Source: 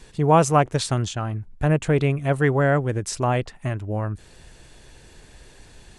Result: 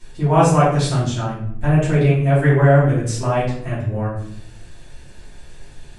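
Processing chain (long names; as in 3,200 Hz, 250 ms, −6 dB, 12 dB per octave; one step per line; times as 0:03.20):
rectangular room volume 120 cubic metres, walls mixed, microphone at 2.8 metres
level −8 dB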